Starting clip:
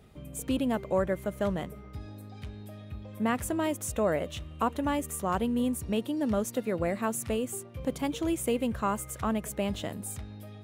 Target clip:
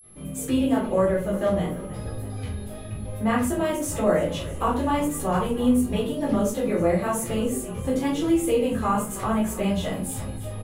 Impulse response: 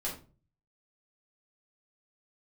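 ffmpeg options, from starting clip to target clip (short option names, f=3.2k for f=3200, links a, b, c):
-filter_complex "[0:a]asplit=7[a][b][c][d][e][f][g];[b]adelay=319,afreqshift=-38,volume=-18.5dB[h];[c]adelay=638,afreqshift=-76,volume=-22.8dB[i];[d]adelay=957,afreqshift=-114,volume=-27.1dB[j];[e]adelay=1276,afreqshift=-152,volume=-31.4dB[k];[f]adelay=1595,afreqshift=-190,volume=-35.7dB[l];[g]adelay=1914,afreqshift=-228,volume=-40dB[m];[a][h][i][j][k][l][m]amix=inputs=7:normalize=0,flanger=delay=17.5:depth=6.4:speed=0.96,agate=range=-33dB:threshold=-52dB:ratio=3:detection=peak[n];[1:a]atrim=start_sample=2205[o];[n][o]afir=irnorm=-1:irlink=0,aeval=exprs='val(0)+0.00126*sin(2*PI*11000*n/s)':c=same,asplit=2[p][q];[q]acompressor=threshold=-37dB:ratio=6,volume=0dB[r];[p][r]amix=inputs=2:normalize=0,volume=3dB"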